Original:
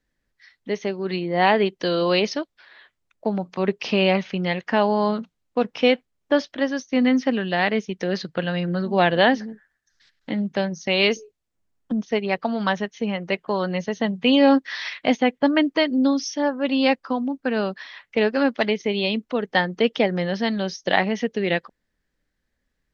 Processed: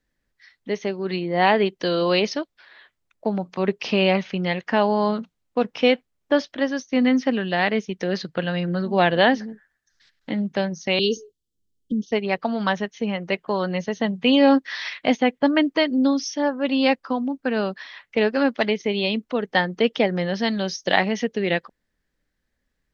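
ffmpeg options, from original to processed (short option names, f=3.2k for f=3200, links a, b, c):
-filter_complex "[0:a]asettb=1/sr,asplit=3[a][b][c];[a]atrim=end=10.994[d];[b]atrim=start=10.99:end=12.12,asetpts=PTS-STARTPTS,afade=t=in:d=0.004:c=qsin,afade=t=out:st=1.126:d=0.004:c=qsin,asuperstop=centerf=1200:order=20:qfactor=0.5[e];[c]atrim=start=12.116[f];[d][e]acrossfade=d=0.004:c1=hsin:c2=qsin[g];[g][f]acrossfade=d=0.004:c1=qsin:c2=hsin,asettb=1/sr,asplit=3[h][i][j];[h]atrim=end=20.374[k];[i]atrim=start=20.37:end=21.25,asetpts=PTS-STARTPTS,afade=t=in:d=0.004:c=qsin,afade=t=out:st=0.876:d=0.004:c=qsin,highshelf=f=5.2k:g=7.5[l];[j]atrim=start=21.246[m];[k][l]acrossfade=d=0.004:c1=hsin:c2=qsin[n];[n][m]acrossfade=d=0.004:c1=qsin:c2=hsin"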